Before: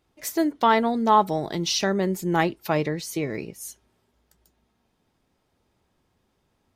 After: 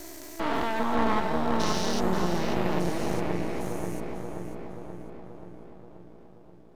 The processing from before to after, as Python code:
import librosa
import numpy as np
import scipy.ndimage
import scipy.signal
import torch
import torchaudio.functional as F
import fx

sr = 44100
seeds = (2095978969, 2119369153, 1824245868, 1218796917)

p1 = fx.spec_steps(x, sr, hold_ms=400)
p2 = fx.echo_filtered(p1, sr, ms=531, feedback_pct=64, hz=1900.0, wet_db=-3)
p3 = np.maximum(p2, 0.0)
p4 = p3 + fx.echo_feedback(p3, sr, ms=548, feedback_pct=29, wet_db=-11.5, dry=0)
y = F.gain(torch.from_numpy(p4), 2.5).numpy()